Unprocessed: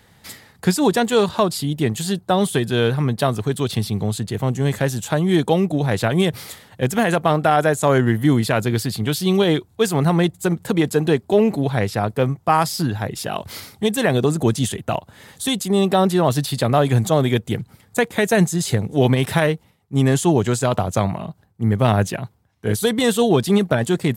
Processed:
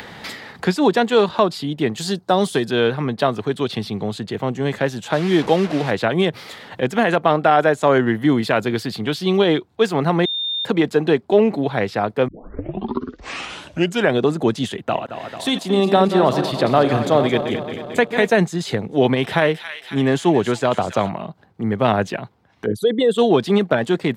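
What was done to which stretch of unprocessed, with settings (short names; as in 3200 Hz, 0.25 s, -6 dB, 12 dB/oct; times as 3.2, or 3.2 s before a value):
1.98–2.71 resonant high shelf 4000 Hz +7 dB, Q 1.5
5.13–5.91 delta modulation 64 kbps, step -23 dBFS
8.42–9.05 high shelf 11000 Hz +7 dB
10.25–10.65 bleep 3630 Hz -21 dBFS
12.28 tape start 1.92 s
14.75–18.3 regenerating reverse delay 0.111 s, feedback 73%, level -9 dB
18.83–21.09 thin delay 0.275 s, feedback 47%, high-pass 1900 Hz, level -6.5 dB
22.66–23.18 formant sharpening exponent 2
whole clip: three-band isolator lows -13 dB, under 190 Hz, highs -18 dB, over 4800 Hz; upward compressor, threshold -25 dBFS; gain +2 dB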